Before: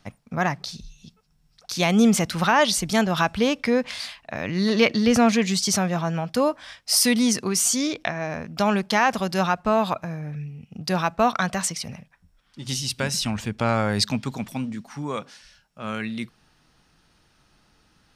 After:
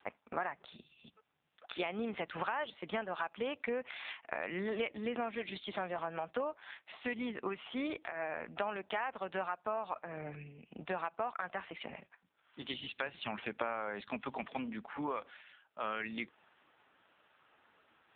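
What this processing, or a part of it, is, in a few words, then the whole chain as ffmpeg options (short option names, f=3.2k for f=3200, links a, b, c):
voicemail: -filter_complex "[0:a]asplit=3[a][b][c];[a]afade=t=out:st=5.35:d=0.02[d];[b]adynamicequalizer=threshold=0.00562:dfrequency=3700:dqfactor=3.7:tfrequency=3700:tqfactor=3.7:attack=5:release=100:ratio=0.375:range=3.5:mode=boostabove:tftype=bell,afade=t=in:st=5.35:d=0.02,afade=t=out:st=5.91:d=0.02[e];[c]afade=t=in:st=5.91:d=0.02[f];[d][e][f]amix=inputs=3:normalize=0,highpass=430,lowpass=3.2k,acompressor=threshold=-35dB:ratio=10,volume=2.5dB" -ar 8000 -c:a libopencore_amrnb -b:a 5900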